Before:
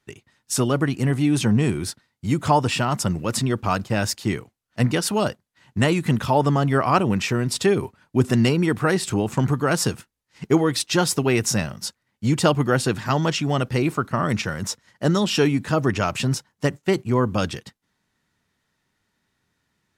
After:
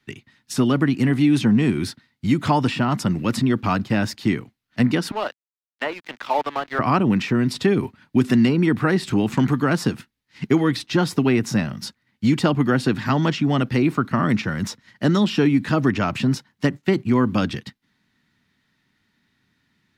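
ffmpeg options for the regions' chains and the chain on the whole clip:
-filter_complex "[0:a]asettb=1/sr,asplit=3[s0][s1][s2];[s0]atrim=end=5.114[s3];[s1]atrim=start=5.11:end=6.79,asetpts=PTS-STARTPTS,afade=t=in:d=0.004:c=qsin,afade=t=out:st=1.676:d=0.004:c=qsin,highpass=f=550:w=0.5412,highpass=f=550:w=1.3066,aemphasis=mode=reproduction:type=riaa,aeval=exprs='sgn(val(0))*max(abs(val(0))-0.0141,0)':c=same[s4];[s2]atrim=start=6.786[s5];[s3][s4]acrossfade=d=0.004:c1=hsin:c2=qsin[s6];[s6][s5]acrossfade=d=0.004:c1=qsin:c2=hsin,equalizer=f=125:t=o:w=1:g=4,equalizer=f=250:t=o:w=1:g=9,equalizer=f=500:t=o:w=1:g=-4,equalizer=f=2000:t=o:w=1:g=6,equalizer=f=4000:t=o:w=1:g=6,equalizer=f=8000:t=o:w=1:g=-5,acrossover=split=210|1400[s7][s8][s9];[s7]acompressor=threshold=0.0562:ratio=4[s10];[s8]acompressor=threshold=0.178:ratio=4[s11];[s9]acompressor=threshold=0.0282:ratio=4[s12];[s10][s11][s12]amix=inputs=3:normalize=0"

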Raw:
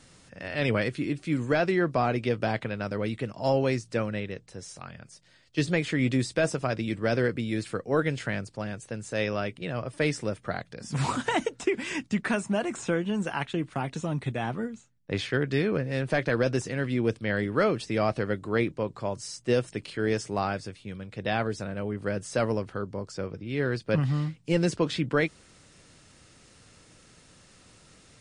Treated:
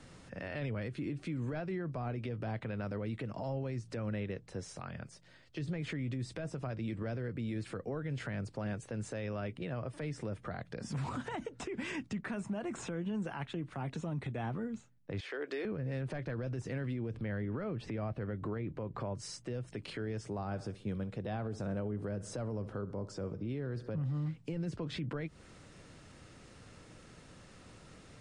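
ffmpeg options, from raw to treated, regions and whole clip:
-filter_complex "[0:a]asettb=1/sr,asplit=3[s0][s1][s2];[s0]atrim=end=15.204[s3];[s1]atrim=start=15.2:end=15.65,asetpts=PTS-STARTPTS,afade=t=in:d=0.004:c=qsin,afade=t=out:st=0.446:d=0.004:c=qsin,highpass=f=350:w=0.5412,highpass=f=350:w=1.3066,acompressor=threshold=0.0126:ratio=3:attack=3.2:release=140:knee=1:detection=peak[s4];[s2]atrim=start=15.646[s5];[s3][s4]acrossfade=d=0.004:c1=hsin:c2=qsin[s6];[s6][s5]acrossfade=d=0.004:c1=qsin:c2=hsin,asettb=1/sr,asplit=3[s7][s8][s9];[s7]atrim=end=17.144[s10];[s8]atrim=start=17.14:end=19.16,asetpts=PTS-STARTPTS,afade=t=in:d=0.004:c=qsin,afade=t=out:st=2.016:d=0.004:c=qsin,bass=f=250:g=1,treble=f=4000:g=-11,acompressor=mode=upward:threshold=0.0224:ratio=2.5:attack=3.2:release=140:knee=2.83:detection=peak[s11];[s9]atrim=start=19.156[s12];[s10][s11]acrossfade=d=0.004:c1=hsin:c2=qsin[s13];[s13][s12]acrossfade=d=0.004:c1=qsin:c2=hsin,asettb=1/sr,asplit=3[s14][s15][s16];[s14]atrim=end=20.274[s17];[s15]atrim=start=20.27:end=24.26,asetpts=PTS-STARTPTS,afade=t=in:d=0.004:c=qsin,afade=t=out:st=3.986:d=0.004:c=qsin,equalizer=f=2200:t=o:w=1.4:g=-6.5,bandreject=f=4500:w=19,aecho=1:1:67|134|201:0.106|0.0455|0.0196,atrim=end_sample=175959[s18];[s16]atrim=start=24.256[s19];[s17][s18]acrossfade=d=0.004:c1=hsin:c2=qsin[s20];[s20][s19]acrossfade=d=0.004:c1=qsin:c2=hsin,acrossover=split=170[s21][s22];[s22]acompressor=threshold=0.0251:ratio=6[s23];[s21][s23]amix=inputs=2:normalize=0,highshelf=f=3000:g=-10.5,alimiter=level_in=2.66:limit=0.0631:level=0:latency=1:release=114,volume=0.376,volume=1.33"

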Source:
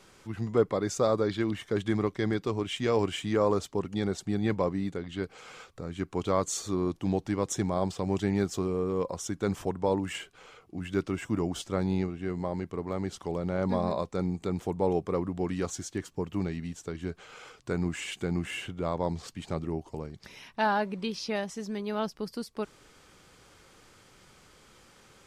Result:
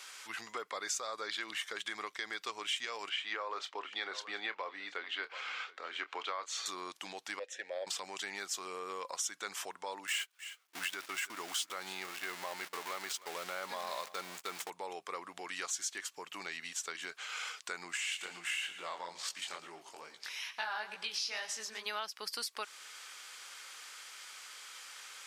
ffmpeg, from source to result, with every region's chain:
-filter_complex "[0:a]asettb=1/sr,asplit=3[s0][s1][s2];[s0]atrim=end=3.094[s3];[s1]atrim=start=3.09:end=6.66,asetpts=PTS-STARTPTS,afade=t=in:d=0.004:c=qsin,afade=t=out:st=3.566:d=0.004:c=qsin,acrossover=split=250 4200:gain=0.0708 1 0.0631[s4][s5][s6];[s4][s5][s6]amix=inputs=3:normalize=0,asplit=2[s7][s8];[s8]adelay=27,volume=0.224[s9];[s7][s9]amix=inputs=2:normalize=0,atrim=end_sample=157437,aecho=1:1:728:0.0841,atrim=end_sample=157437[s10];[s2]atrim=start=6.656[s11];[s3][s10]acrossfade=d=0.004:c1=hsin:c2=qsin[s12];[s12][s11]acrossfade=d=0.004:c1=qsin:c2=hsin,asettb=1/sr,asplit=3[s13][s14][s15];[s13]atrim=end=7.394[s16];[s14]atrim=start=7.39:end=7.87,asetpts=PTS-STARTPTS,afade=t=in:d=0.004:c=qsin,afade=t=out:st=0.476:d=0.004:c=qsin,asplit=3[s17][s18][s19];[s17]bandpass=f=530:t=q:w=8,volume=1[s20];[s18]bandpass=f=1840:t=q:w=8,volume=0.501[s21];[s19]bandpass=f=2480:t=q:w=8,volume=0.355[s22];[s20][s21][s22]amix=inputs=3:normalize=0,acontrast=29[s23];[s15]atrim=start=7.866[s24];[s16][s23]acrossfade=d=0.004:c1=hsin:c2=qsin[s25];[s25][s24]acrossfade=d=0.004:c1=qsin:c2=hsin,asettb=1/sr,asplit=3[s26][s27][s28];[s26]atrim=end=10.074[s29];[s27]atrim=start=10.07:end=14.7,asetpts=PTS-STARTPTS,afade=t=in:d=0.004:c=qsin,afade=t=out:st=4.626:d=0.004:c=qsin,aeval=exprs='val(0)+0.5*0.0119*sgn(val(0))':c=same,agate=range=0.0141:threshold=0.0126:ratio=16:release=100:detection=peak,aecho=1:1:312:0.0891,atrim=end_sample=204183[s30];[s28]atrim=start=14.696[s31];[s29][s30]acrossfade=d=0.004:c1=hsin:c2=qsin[s32];[s32][s31]acrossfade=d=0.004:c1=qsin:c2=hsin,asettb=1/sr,asplit=3[s33][s34][s35];[s33]atrim=end=17.974[s36];[s34]atrim=start=17.97:end=21.86,asetpts=PTS-STARTPTS,afade=t=in:d=0.004:c=qsin,afade=t=out:st=3.886:d=0.004:c=qsin,acompressor=threshold=0.02:ratio=2:attack=3.2:release=140:knee=1:detection=peak,flanger=delay=17:depth=6.6:speed=2.3,aecho=1:1:114|228|342|456:0.158|0.0682|0.0293|0.0126,atrim=end_sample=171549[s37];[s35]atrim=start=21.856[s38];[s36][s37]acrossfade=d=0.004:c1=hsin:c2=qsin[s39];[s39][s38]acrossfade=d=0.004:c1=qsin:c2=hsin,alimiter=limit=0.0631:level=0:latency=1:release=340,highpass=1500,acompressor=threshold=0.00501:ratio=3,volume=3.55"

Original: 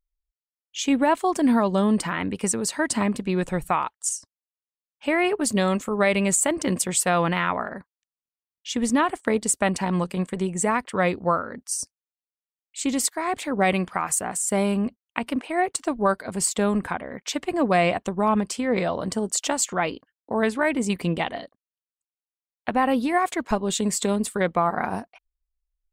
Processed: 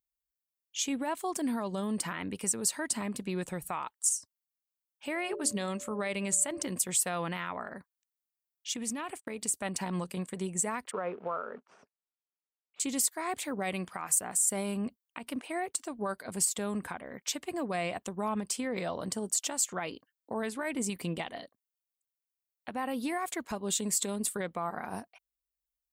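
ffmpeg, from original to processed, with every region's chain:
-filter_complex "[0:a]asettb=1/sr,asplit=3[s0][s1][s2];[s0]atrim=end=5.154[s3];[s1]atrim=start=5.15:end=6.63,asetpts=PTS-STARTPTS,afade=t=in:d=0.004:c=qsin,afade=t=out:st=1.476:d=0.004:c=qsin,lowpass=10000,bandreject=f=60:t=h:w=6,bandreject=f=120:t=h:w=6,bandreject=f=180:t=h:w=6,bandreject=f=240:t=h:w=6,bandreject=f=300:t=h:w=6,bandreject=f=360:t=h:w=6,bandreject=f=420:t=h:w=6,aeval=exprs='val(0)+0.0126*sin(2*PI*580*n/s)':c=same[s4];[s2]atrim=start=6.626[s5];[s3][s4]acrossfade=d=0.004:c1=hsin:c2=qsin[s6];[s6][s5]acrossfade=d=0.004:c1=qsin:c2=hsin,asettb=1/sr,asplit=3[s7][s8][s9];[s7]atrim=end=8.744[s10];[s8]atrim=start=8.74:end=9.54,asetpts=PTS-STARTPTS,afade=t=in:d=0.004:c=qsin,afade=t=out:st=0.796:d=0.004:c=qsin,equalizer=f=2500:t=o:w=0.31:g=8,acompressor=threshold=0.0562:ratio=10:attack=3.2:release=140:knee=1:detection=peak,agate=range=0.02:threshold=0.00562:ratio=16:release=100:detection=peak[s11];[s9]atrim=start=9.536[s12];[s10][s11]acrossfade=d=0.004:c1=hsin:c2=qsin[s13];[s13][s12]acrossfade=d=0.004:c1=qsin:c2=hsin,asettb=1/sr,asplit=3[s14][s15][s16];[s14]atrim=end=10.914[s17];[s15]atrim=start=10.91:end=12.8,asetpts=PTS-STARTPTS,afade=t=in:d=0.004:c=qsin,afade=t=out:st=1.886:d=0.004:c=qsin,acrusher=bits=3:mode=log:mix=0:aa=0.000001,highpass=230,equalizer=f=300:t=q:w=4:g=-9,equalizer=f=430:t=q:w=4:g=9,equalizer=f=640:t=q:w=4:g=4,equalizer=f=910:t=q:w=4:g=3,equalizer=f=1300:t=q:w=4:g=4,equalizer=f=2000:t=q:w=4:g=-7,lowpass=f=2100:w=0.5412,lowpass=f=2100:w=1.3066[s18];[s16]atrim=start=12.796[s19];[s17][s18]acrossfade=d=0.004:c1=hsin:c2=qsin[s20];[s20][s19]acrossfade=d=0.004:c1=qsin:c2=hsin,alimiter=limit=0.15:level=0:latency=1:release=151,highpass=68,aemphasis=mode=production:type=50kf,volume=0.376"

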